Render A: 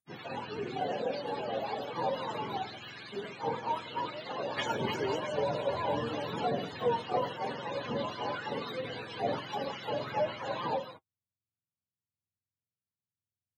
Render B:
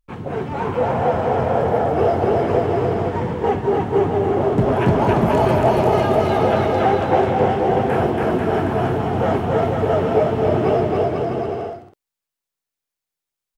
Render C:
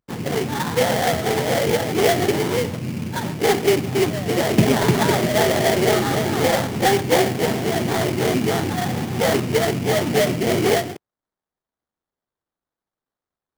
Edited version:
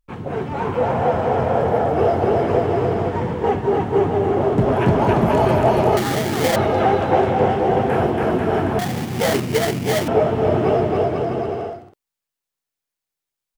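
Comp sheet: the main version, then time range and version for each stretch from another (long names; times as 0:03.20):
B
0:05.97–0:06.56: punch in from C
0:08.79–0:10.08: punch in from C
not used: A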